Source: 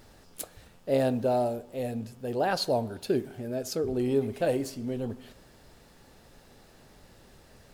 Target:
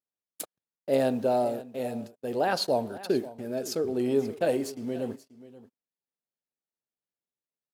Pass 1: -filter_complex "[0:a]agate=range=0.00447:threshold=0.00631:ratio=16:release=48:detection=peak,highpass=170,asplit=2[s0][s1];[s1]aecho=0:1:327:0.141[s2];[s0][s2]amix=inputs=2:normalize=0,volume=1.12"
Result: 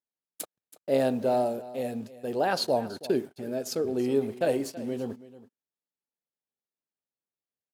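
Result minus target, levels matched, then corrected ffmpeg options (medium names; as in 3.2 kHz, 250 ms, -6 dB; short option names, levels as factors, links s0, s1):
echo 206 ms early
-filter_complex "[0:a]agate=range=0.00447:threshold=0.00631:ratio=16:release=48:detection=peak,highpass=170,asplit=2[s0][s1];[s1]aecho=0:1:533:0.141[s2];[s0][s2]amix=inputs=2:normalize=0,volume=1.12"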